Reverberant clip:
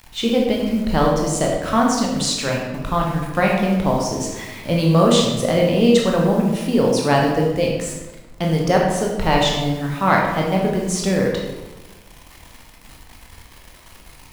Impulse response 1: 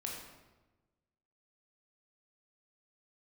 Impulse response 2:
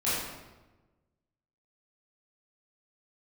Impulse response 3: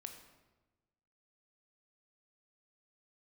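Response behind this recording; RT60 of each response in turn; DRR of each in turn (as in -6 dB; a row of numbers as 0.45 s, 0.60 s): 1; 1.2 s, 1.2 s, 1.2 s; -1.5 dB, -11.5 dB, 5.0 dB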